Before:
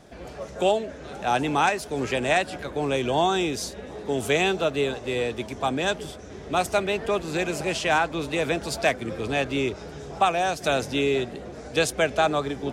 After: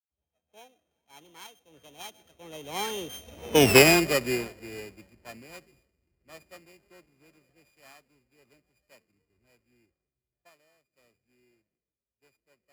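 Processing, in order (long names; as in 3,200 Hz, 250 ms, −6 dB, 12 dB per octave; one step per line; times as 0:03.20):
samples sorted by size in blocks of 16 samples
source passing by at 0:03.67, 46 m/s, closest 6.4 metres
multiband upward and downward expander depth 100%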